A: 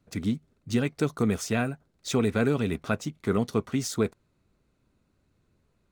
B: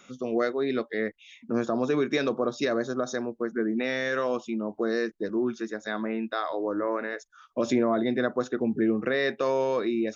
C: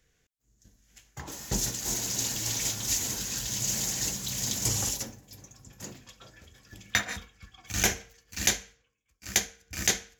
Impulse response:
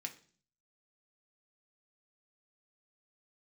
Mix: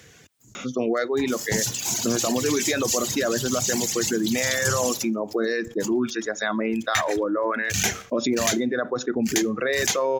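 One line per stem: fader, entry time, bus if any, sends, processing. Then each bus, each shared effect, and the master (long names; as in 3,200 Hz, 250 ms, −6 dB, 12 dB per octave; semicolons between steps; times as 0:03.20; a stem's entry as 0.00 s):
muted
+1.5 dB, 0.55 s, send −8.5 dB, brickwall limiter −19 dBFS, peak gain reduction 5.5 dB
−5.0 dB, 0.00 s, no send, high-pass filter 86 Hz 24 dB per octave; high-shelf EQ 11,000 Hz −5.5 dB; leveller curve on the samples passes 2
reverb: on, RT60 0.45 s, pre-delay 3 ms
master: reverb reduction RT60 1.9 s; envelope flattener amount 50%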